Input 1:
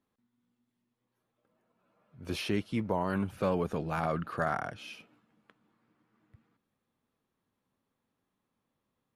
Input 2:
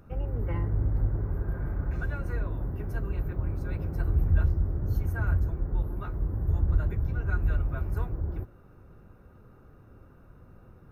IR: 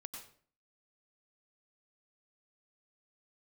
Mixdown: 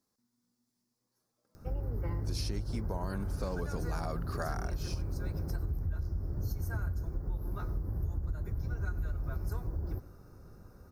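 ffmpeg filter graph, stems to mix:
-filter_complex "[0:a]volume=-2dB[link_01];[1:a]adelay=1550,volume=-2.5dB,asplit=2[link_02][link_03];[link_03]volume=-8dB[link_04];[2:a]atrim=start_sample=2205[link_05];[link_04][link_05]afir=irnorm=-1:irlink=0[link_06];[link_01][link_02][link_06]amix=inputs=3:normalize=0,highshelf=frequency=3900:width_type=q:width=3:gain=9,acompressor=threshold=-30dB:ratio=10"

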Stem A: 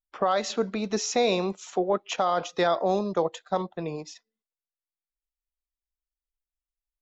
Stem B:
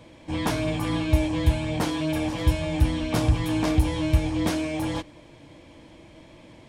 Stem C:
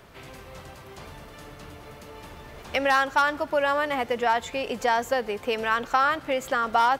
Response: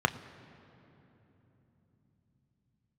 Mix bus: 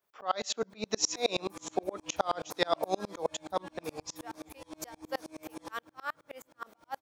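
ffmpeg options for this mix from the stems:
-filter_complex "[0:a]volume=2dB,asplit=2[link_01][link_02];[1:a]alimiter=limit=-17.5dB:level=0:latency=1:release=299,asoftclip=type=tanh:threshold=-23.5dB,adelay=700,volume=-9dB,asplit=2[link_03][link_04];[link_04]volume=-13dB[link_05];[2:a]aeval=exprs='val(0)*pow(10,-38*(0.5-0.5*cos(2*PI*3.3*n/s))/20)':channel_layout=same,volume=-3.5dB,asplit=2[link_06][link_07];[link_07]volume=-24dB[link_08];[link_02]apad=whole_len=308460[link_09];[link_06][link_09]sidechaincompress=threshold=-41dB:ratio=8:attack=16:release=402[link_10];[3:a]atrim=start_sample=2205[link_11];[link_05][link_08]amix=inputs=2:normalize=0[link_12];[link_12][link_11]afir=irnorm=-1:irlink=0[link_13];[link_01][link_03][link_10][link_13]amix=inputs=4:normalize=0,aemphasis=mode=production:type=bsi,aeval=exprs='val(0)*pow(10,-34*if(lt(mod(-9.5*n/s,1),2*abs(-9.5)/1000),1-mod(-9.5*n/s,1)/(2*abs(-9.5)/1000),(mod(-9.5*n/s,1)-2*abs(-9.5)/1000)/(1-2*abs(-9.5)/1000))/20)':channel_layout=same"

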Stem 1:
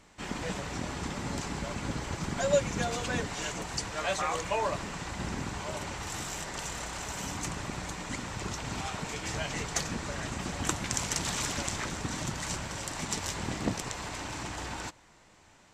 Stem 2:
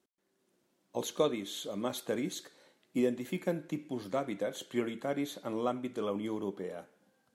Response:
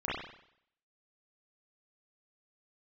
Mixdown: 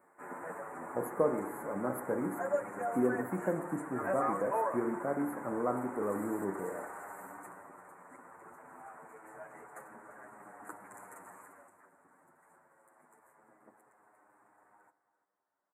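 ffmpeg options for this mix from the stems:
-filter_complex "[0:a]highpass=420,asplit=2[link_01][link_02];[link_02]adelay=8.4,afreqshift=-0.25[link_03];[link_01][link_03]amix=inputs=2:normalize=1,afade=type=out:start_time=6.91:duration=0.79:silence=0.375837,afade=type=out:start_time=11.13:duration=0.61:silence=0.237137,asplit=3[link_04][link_05][link_06];[link_05]volume=-22dB[link_07];[link_06]volume=-15.5dB[link_08];[1:a]volume=-2dB,asplit=2[link_09][link_10];[link_10]volume=-12dB[link_11];[2:a]atrim=start_sample=2205[link_12];[link_07][link_11]amix=inputs=2:normalize=0[link_13];[link_13][link_12]afir=irnorm=-1:irlink=0[link_14];[link_08]aecho=0:1:344:1[link_15];[link_04][link_09][link_14][link_15]amix=inputs=4:normalize=0,asuperstop=centerf=4200:order=8:qfactor=0.54"

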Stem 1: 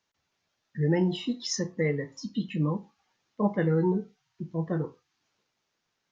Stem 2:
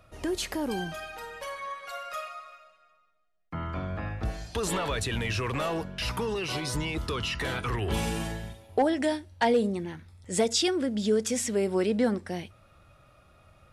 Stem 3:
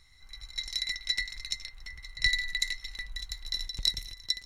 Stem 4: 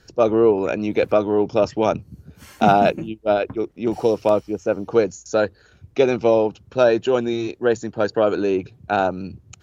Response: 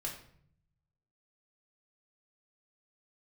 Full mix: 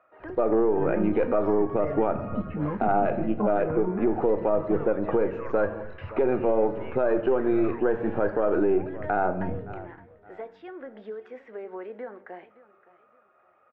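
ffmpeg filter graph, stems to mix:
-filter_complex "[0:a]volume=0.5dB[link_01];[1:a]highpass=540,acompressor=threshold=-35dB:ratio=4,volume=-2dB,asplit=3[link_02][link_03][link_04];[link_03]volume=-9dB[link_05];[link_04]volume=-16.5dB[link_06];[2:a]adelay=2050,volume=-18dB[link_07];[3:a]aeval=exprs='if(lt(val(0),0),0.708*val(0),val(0))':channel_layout=same,adelay=200,volume=2.5dB,asplit=3[link_08][link_09][link_10];[link_09]volume=-4dB[link_11];[link_10]volume=-23.5dB[link_12];[4:a]atrim=start_sample=2205[link_13];[link_05][link_11]amix=inputs=2:normalize=0[link_14];[link_14][link_13]afir=irnorm=-1:irlink=0[link_15];[link_06][link_12]amix=inputs=2:normalize=0,aecho=0:1:567|1134|1701|2268:1|0.3|0.09|0.027[link_16];[link_01][link_02][link_07][link_08][link_15][link_16]amix=inputs=6:normalize=0,lowpass=frequency=1800:width=0.5412,lowpass=frequency=1800:width=1.3066,equalizer=frequency=160:width_type=o:width=0.28:gain=-7,alimiter=limit=-14dB:level=0:latency=1:release=229"

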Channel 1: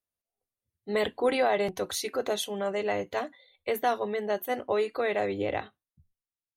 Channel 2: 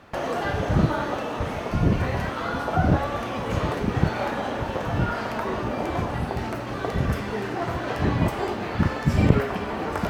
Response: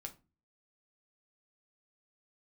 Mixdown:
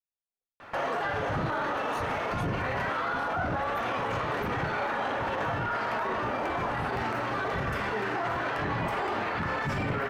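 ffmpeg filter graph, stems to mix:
-filter_complex "[0:a]volume=-14.5dB[link_01];[1:a]equalizer=frequency=1400:width=0.41:gain=12.5,flanger=delay=2.9:depth=9.7:regen=-79:speed=0.35:shape=triangular,adelay=600,volume=-4.5dB,asplit=2[link_02][link_03];[link_03]volume=-1.5dB[link_04];[2:a]atrim=start_sample=2205[link_05];[link_04][link_05]afir=irnorm=-1:irlink=0[link_06];[link_01][link_02][link_06]amix=inputs=3:normalize=0,volume=12dB,asoftclip=hard,volume=-12dB,alimiter=limit=-22.5dB:level=0:latency=1:release=18"

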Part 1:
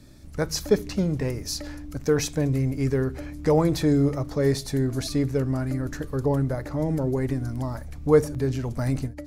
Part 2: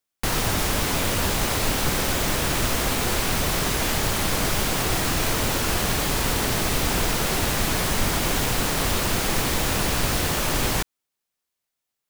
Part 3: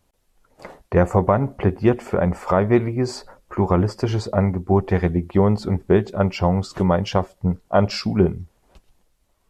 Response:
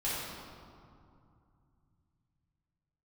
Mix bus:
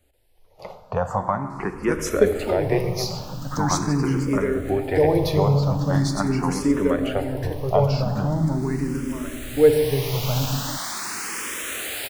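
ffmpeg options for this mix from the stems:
-filter_complex "[0:a]adelay=1500,volume=2dB,asplit=2[link_01][link_02];[link_02]volume=-11.5dB[link_03];[1:a]highpass=frequency=960:poles=1,adelay=2000,volume=-0.5dB[link_04];[2:a]acrossover=split=470|1900[link_05][link_06][link_07];[link_05]acompressor=threshold=-31dB:ratio=4[link_08];[link_06]acompressor=threshold=-21dB:ratio=4[link_09];[link_07]acompressor=threshold=-40dB:ratio=4[link_10];[link_08][link_09][link_10]amix=inputs=3:normalize=0,volume=2dB,asplit=3[link_11][link_12][link_13];[link_12]volume=-13.5dB[link_14];[link_13]apad=whole_len=621396[link_15];[link_04][link_15]sidechaincompress=threshold=-40dB:ratio=8:attack=5.4:release=1310[link_16];[3:a]atrim=start_sample=2205[link_17];[link_03][link_14]amix=inputs=2:normalize=0[link_18];[link_18][link_17]afir=irnorm=-1:irlink=0[link_19];[link_01][link_16][link_11][link_19]amix=inputs=4:normalize=0,asplit=2[link_20][link_21];[link_21]afreqshift=0.42[link_22];[link_20][link_22]amix=inputs=2:normalize=1"

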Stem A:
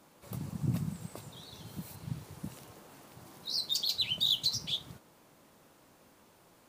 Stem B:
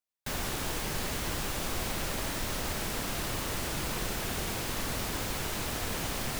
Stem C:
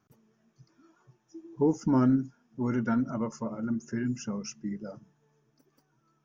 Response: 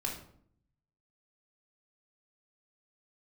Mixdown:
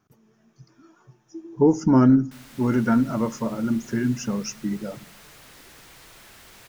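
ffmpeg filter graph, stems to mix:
-filter_complex "[1:a]equalizer=frequency=1900:width=1.1:gain=8.5,aeval=exprs='0.0251*(abs(mod(val(0)/0.0251+3,4)-2)-1)':channel_layout=same,adelay=2050,volume=-12dB[link_01];[2:a]dynaudnorm=framelen=140:gausssize=3:maxgain=4.5dB,volume=2.5dB,asplit=2[link_02][link_03];[link_03]volume=-20.5dB[link_04];[3:a]atrim=start_sample=2205[link_05];[link_04][link_05]afir=irnorm=-1:irlink=0[link_06];[link_01][link_02][link_06]amix=inputs=3:normalize=0"

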